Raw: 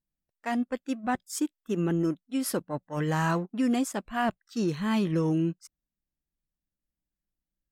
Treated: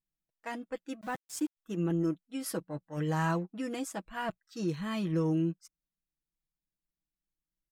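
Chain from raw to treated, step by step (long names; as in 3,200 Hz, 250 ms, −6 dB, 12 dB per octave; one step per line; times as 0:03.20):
comb filter 6.2 ms, depth 62%
0:01.01–0:01.57: centre clipping without the shift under −40 dBFS
level −7 dB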